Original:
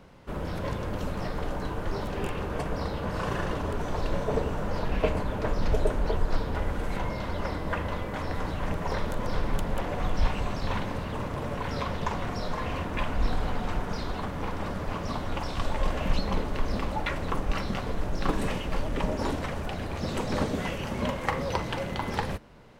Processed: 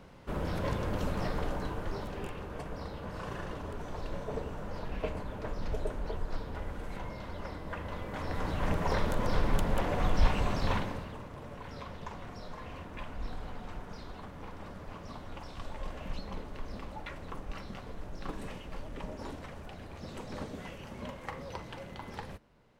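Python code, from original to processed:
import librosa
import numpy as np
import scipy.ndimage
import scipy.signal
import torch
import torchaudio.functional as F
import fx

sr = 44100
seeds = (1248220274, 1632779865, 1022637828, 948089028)

y = fx.gain(x, sr, db=fx.line((1.32, -1.0), (2.42, -9.5), (7.73, -9.5), (8.7, 0.0), (10.71, 0.0), (11.23, -12.5)))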